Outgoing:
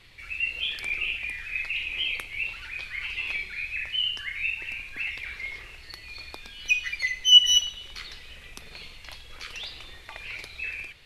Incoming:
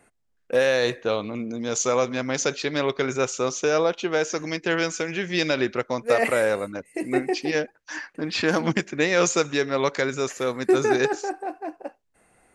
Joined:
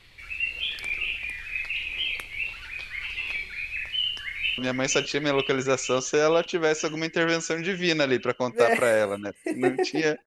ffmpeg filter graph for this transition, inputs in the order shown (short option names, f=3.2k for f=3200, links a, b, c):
-filter_complex "[0:a]apad=whole_dur=10.26,atrim=end=10.26,atrim=end=4.582[a];[1:a]atrim=start=2.078:end=7.76[b];[a][b]acrossfade=d=0.004:c1=hsin:c2=hsin,asplit=2[c][d];[d]afade=t=in:st=3.96:d=0.01,afade=t=out:st=4.58:d=0.01,aecho=0:1:470|940|1410|1880|2350|2820|3290|3760|4230|4700|5170|5640:0.562341|0.421756|0.316317|0.237238|0.177928|0.133446|0.100085|0.0750635|0.0562976|0.0422232|0.0316674|0.0237506[e];[c][e]amix=inputs=2:normalize=0"